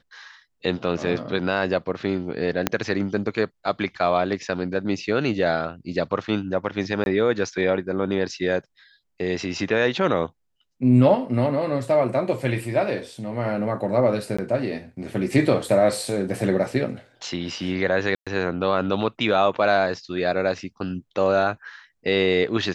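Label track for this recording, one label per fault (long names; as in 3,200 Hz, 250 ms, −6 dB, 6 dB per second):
2.670000	2.670000	click −4 dBFS
7.040000	7.060000	drop-out 21 ms
14.370000	14.380000	drop-out 15 ms
18.150000	18.270000	drop-out 116 ms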